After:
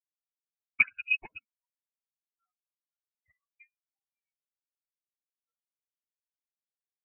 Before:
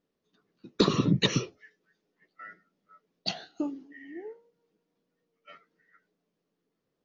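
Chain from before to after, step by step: per-bin expansion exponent 3; inverted band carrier 2700 Hz; upward expander 2.5:1, over -46 dBFS; gain +3.5 dB

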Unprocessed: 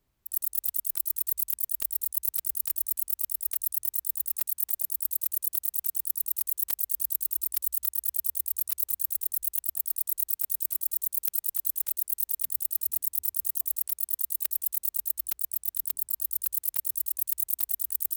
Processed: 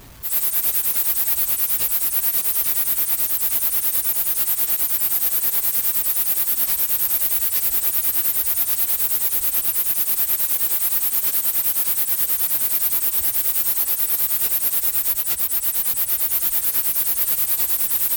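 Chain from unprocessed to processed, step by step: phase scrambler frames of 50 ms; power-law curve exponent 0.5; gain +3.5 dB

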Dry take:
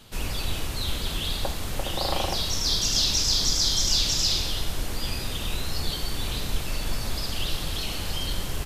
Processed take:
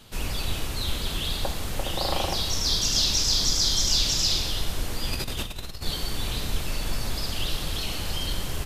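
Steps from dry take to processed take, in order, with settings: 5.13–5.86 negative-ratio compressor -31 dBFS, ratio -0.5; reverb RT60 1.1 s, pre-delay 85 ms, DRR 15.5 dB

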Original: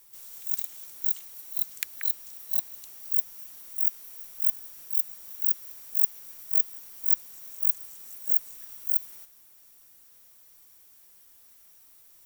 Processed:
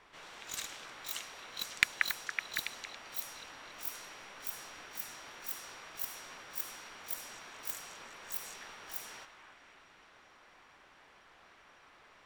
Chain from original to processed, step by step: overdrive pedal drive 12 dB, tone 2000 Hz, clips at -4 dBFS; delay with a stepping band-pass 0.279 s, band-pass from 1200 Hz, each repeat 0.7 oct, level -5 dB; low-pass opened by the level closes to 2400 Hz, open at -31 dBFS; gain +8.5 dB

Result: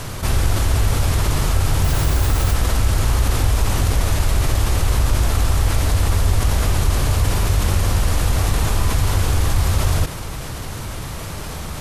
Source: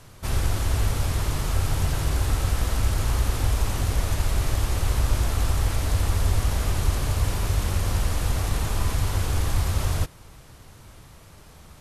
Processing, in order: 1.83–2.53 added noise violet -42 dBFS; fast leveller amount 50%; gain +3.5 dB

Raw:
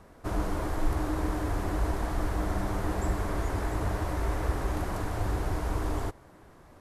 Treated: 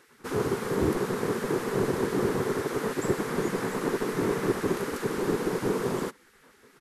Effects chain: downsampling 32000 Hz; spectral gate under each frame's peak -15 dB weak; resonant low shelf 520 Hz +7 dB, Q 3; gain +5.5 dB

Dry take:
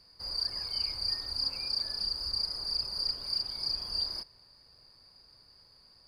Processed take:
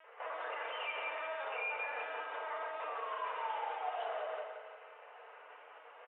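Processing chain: octaver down 1 oct, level -5 dB; comb 2.5 ms, depth 82%; LPC vocoder at 8 kHz pitch kept; Chebyshev band-pass 450–3000 Hz, order 5; painted sound fall, 2.87–4.27, 600–1200 Hz -52 dBFS; feedback echo 0.174 s, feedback 36%, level -7 dB; limiter -46.5 dBFS, peak gain reduction 10.5 dB; FDN reverb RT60 1.4 s, low-frequency decay 1.25×, high-frequency decay 0.75×, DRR 0 dB; gain +12 dB

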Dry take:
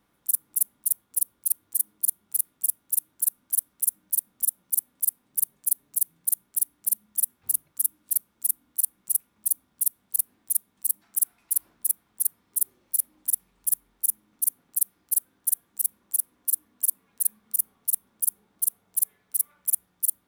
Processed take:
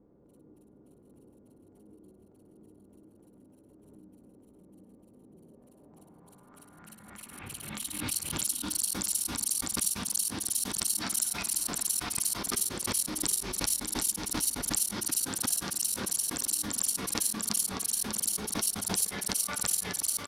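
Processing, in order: low-pass sweep 430 Hz -> 5100 Hz, 5.37–8.24; tapped delay 59/424/592/734/759 ms -7/-19/-8/-12/-3.5 dB; backwards sustainer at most 36 dB/s; gain +7 dB

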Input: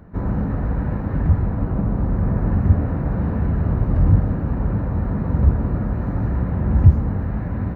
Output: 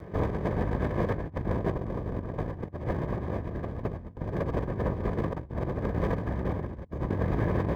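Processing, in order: minimum comb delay 1.8 ms; notch comb 1400 Hz; negative-ratio compressor -30 dBFS, ratio -0.5

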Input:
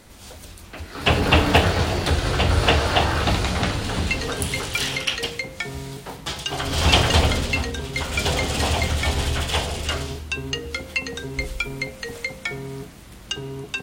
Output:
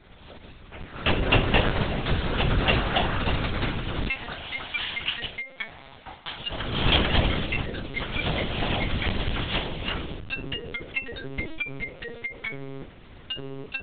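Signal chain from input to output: 4.09–6.39 HPF 520 Hz 24 dB/oct; dynamic EQ 720 Hz, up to -3 dB, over -34 dBFS, Q 0.92; LPC vocoder at 8 kHz pitch kept; gain -3.5 dB

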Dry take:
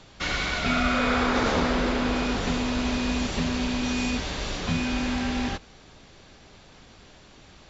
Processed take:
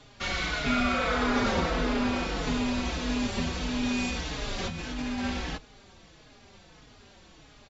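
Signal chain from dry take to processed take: 4.58–5.25 negative-ratio compressor -30 dBFS, ratio -1; endless flanger 4.3 ms -1.6 Hz

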